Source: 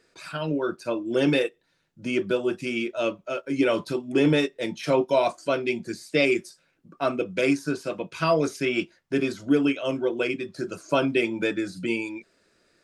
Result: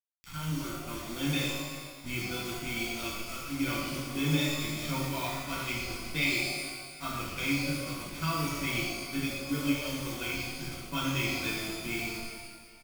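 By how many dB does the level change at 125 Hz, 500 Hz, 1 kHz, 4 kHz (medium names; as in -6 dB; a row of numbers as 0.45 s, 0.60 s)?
0.0 dB, -16.0 dB, -6.5 dB, 0.0 dB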